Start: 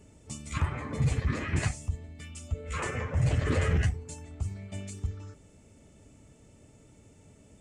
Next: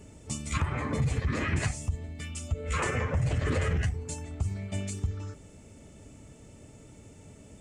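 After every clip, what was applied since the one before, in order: in parallel at -1 dB: peak limiter -24 dBFS, peak gain reduction 8 dB; on the sum: compression, threshold -24 dBFS, peak gain reduction 6 dB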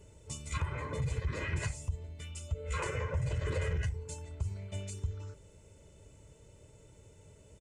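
comb 2 ms, depth 66%; trim -8 dB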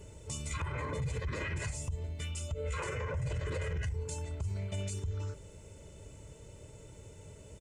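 peak limiter -34.5 dBFS, peak gain reduction 11 dB; trim +6 dB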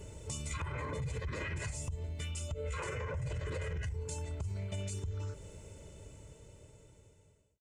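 fade out at the end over 2.32 s; compression 2:1, threshold -41 dBFS, peak gain reduction 5.5 dB; trim +2.5 dB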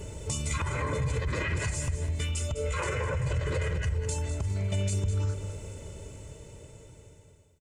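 feedback delay 204 ms, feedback 44%, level -10.5 dB; trim +8 dB

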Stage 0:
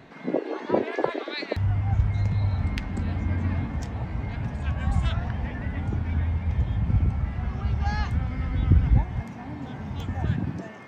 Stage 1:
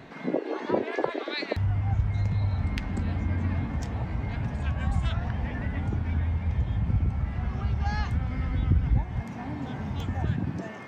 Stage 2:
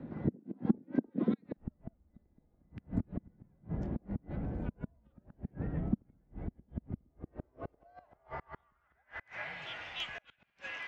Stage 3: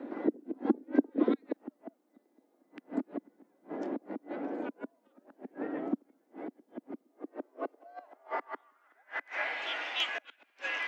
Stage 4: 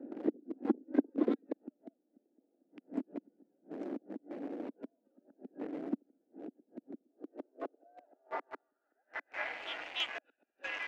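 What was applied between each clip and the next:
compression 1.5:1, threshold -33 dBFS, peak gain reduction 7.5 dB; trim +2.5 dB
frequency shift -120 Hz; inverted gate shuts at -20 dBFS, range -33 dB; band-pass sweep 230 Hz -> 2.7 kHz, 6.92–9.65 s; trim +10.5 dB
elliptic high-pass 280 Hz, stop band 70 dB; trim +8.5 dB
local Wiener filter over 41 samples; trim -3 dB

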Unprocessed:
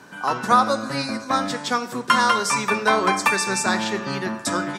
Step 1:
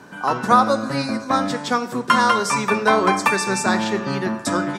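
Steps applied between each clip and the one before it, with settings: tilt shelf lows +3 dB, about 1.2 kHz; trim +1.5 dB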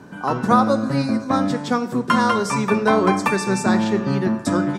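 bass shelf 470 Hz +11 dB; trim -4.5 dB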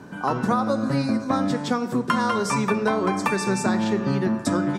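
compression, threshold -18 dBFS, peak gain reduction 8.5 dB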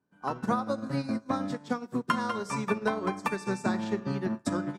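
upward expansion 2.5:1, over -41 dBFS; trim -3.5 dB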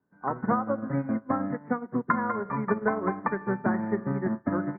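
steep low-pass 2.1 kHz 96 dB/octave; trim +2.5 dB

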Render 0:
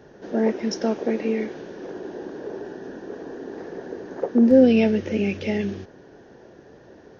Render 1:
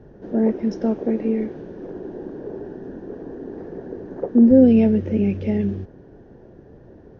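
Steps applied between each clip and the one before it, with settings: tilt EQ -4 dB/octave; trim -4.5 dB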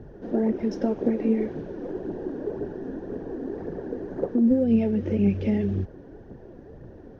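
compression 6:1, threshold -19 dBFS, peak gain reduction 11 dB; phaser 1.9 Hz, delay 4.3 ms, feedback 41%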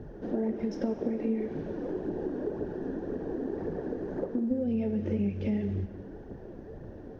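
compression 3:1, threshold -30 dBFS, peak gain reduction 10.5 dB; gated-style reverb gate 490 ms falling, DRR 8.5 dB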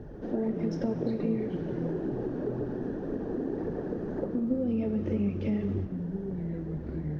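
ever faster or slower copies 114 ms, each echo -5 st, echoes 2, each echo -6 dB

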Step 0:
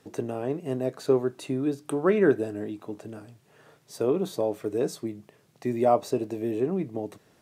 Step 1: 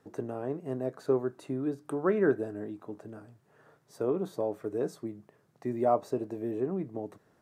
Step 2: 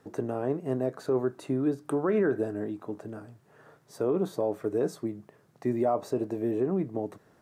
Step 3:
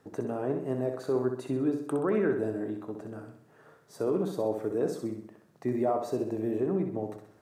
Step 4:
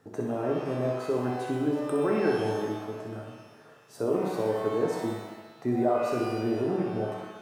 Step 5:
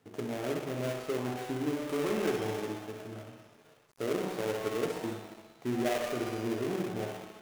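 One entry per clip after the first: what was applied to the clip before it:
resonant high shelf 2 kHz -6.5 dB, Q 1.5; trim -5 dB
peak limiter -22.5 dBFS, peak gain reduction 8 dB; trim +5 dB
flutter echo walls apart 11 m, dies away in 0.59 s; trim -2 dB
pitch-shifted reverb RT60 1 s, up +12 st, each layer -8 dB, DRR 1 dB
dead-time distortion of 0.27 ms; trim -5 dB

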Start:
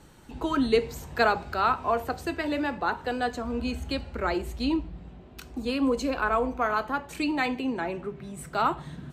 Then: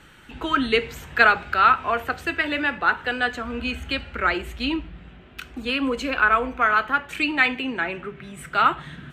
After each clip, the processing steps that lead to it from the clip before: high-order bell 2.1 kHz +11.5 dB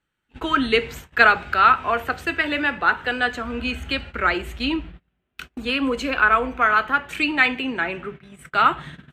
gate -37 dBFS, range -30 dB; trim +1.5 dB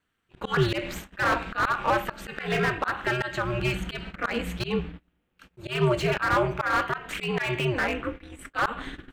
slow attack 156 ms; ring modulator 120 Hz; slew-rate limiter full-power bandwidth 79 Hz; trim +4 dB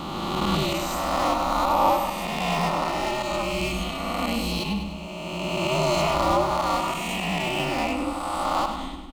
reverse spectral sustain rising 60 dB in 2.65 s; static phaser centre 430 Hz, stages 6; on a send: feedback delay 100 ms, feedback 54%, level -8.5 dB; on the sum: trim +1.5 dB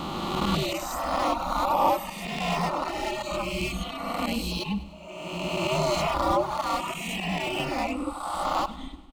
reverb removal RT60 1.8 s

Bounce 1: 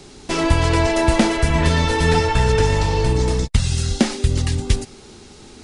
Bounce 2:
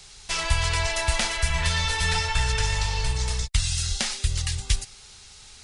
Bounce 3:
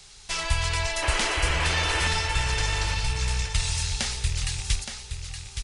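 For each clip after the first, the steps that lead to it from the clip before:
amplifier tone stack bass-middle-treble 10-0-10; trim +1.5 dB
rattle on loud lows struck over -32 dBFS, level -25 dBFS; painted sound noise, 1.02–2.08 s, 280–3200 Hz -28 dBFS; feedback delay 869 ms, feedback 26%, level -8 dB; trim -2 dB

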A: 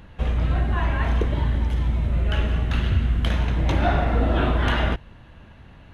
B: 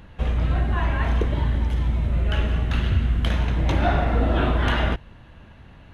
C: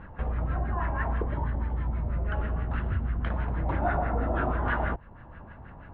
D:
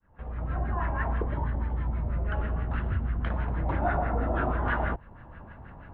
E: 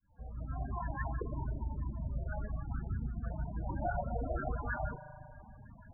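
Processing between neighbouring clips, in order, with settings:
no audible change
compression 1.5:1, threshold -40 dBFS, peak gain reduction 9 dB; LFO low-pass sine 6.2 Hz 820–1700 Hz
fade-in on the opening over 0.63 s
spring tank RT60 2.3 s, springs 38 ms, chirp 70 ms, DRR 3.5 dB; reverb removal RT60 0.6 s; loudest bins only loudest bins 16; trim -6.5 dB

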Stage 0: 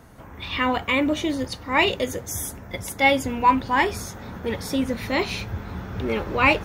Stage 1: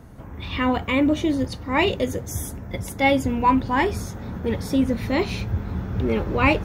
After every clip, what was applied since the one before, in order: bass shelf 470 Hz +10 dB; trim -3.5 dB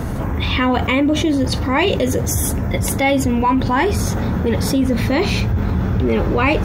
level flattener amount 70%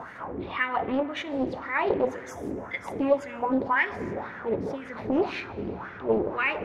wah-wah 1.9 Hz 330–1900 Hz, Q 3.4; reverberation RT60 2.3 s, pre-delay 49 ms, DRR 16.5 dB; loudspeaker Doppler distortion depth 0.57 ms

